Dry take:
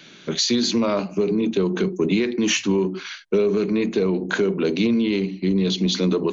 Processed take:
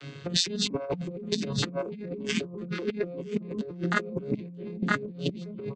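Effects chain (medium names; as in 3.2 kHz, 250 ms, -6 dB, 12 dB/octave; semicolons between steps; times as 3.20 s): vocoder on a broken chord major triad, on C#3, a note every 254 ms; reverb removal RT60 1 s; doubling 27 ms -3 dB; delay 1059 ms -3.5 dB; peak limiter -19 dBFS, peak gain reduction 12 dB; compressor with a negative ratio -33 dBFS, ratio -0.5; tempo 1.1×; trim +3 dB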